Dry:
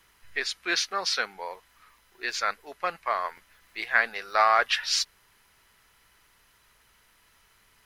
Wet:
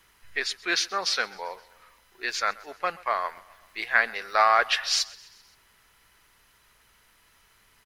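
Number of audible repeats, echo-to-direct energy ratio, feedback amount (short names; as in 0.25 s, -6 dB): 3, -20.5 dB, 58%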